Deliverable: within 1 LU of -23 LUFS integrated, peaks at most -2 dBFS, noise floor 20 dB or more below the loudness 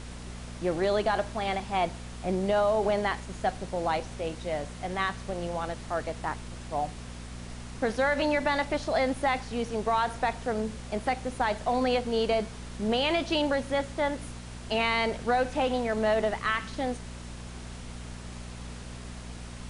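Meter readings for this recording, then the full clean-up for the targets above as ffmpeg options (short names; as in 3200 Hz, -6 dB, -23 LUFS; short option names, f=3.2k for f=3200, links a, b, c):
hum 60 Hz; harmonics up to 240 Hz; hum level -39 dBFS; noise floor -42 dBFS; noise floor target -49 dBFS; loudness -29.0 LUFS; peak -14.5 dBFS; loudness target -23.0 LUFS
-> -af "bandreject=f=60:t=h:w=4,bandreject=f=120:t=h:w=4,bandreject=f=180:t=h:w=4,bandreject=f=240:t=h:w=4"
-af "afftdn=nr=7:nf=-42"
-af "volume=6dB"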